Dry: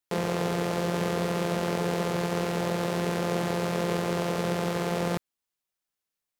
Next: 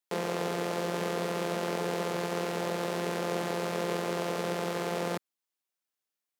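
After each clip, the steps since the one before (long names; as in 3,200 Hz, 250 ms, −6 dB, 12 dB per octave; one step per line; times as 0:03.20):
high-pass filter 220 Hz 12 dB per octave
level −2.5 dB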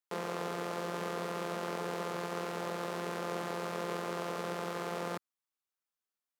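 parametric band 1,200 Hz +6 dB 0.74 octaves
level −6.5 dB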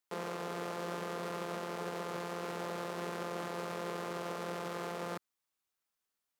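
brickwall limiter −34 dBFS, peak gain reduction 10 dB
level +4.5 dB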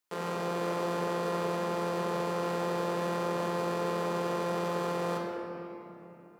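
convolution reverb RT60 3.5 s, pre-delay 6 ms, DRR −2 dB
level +2 dB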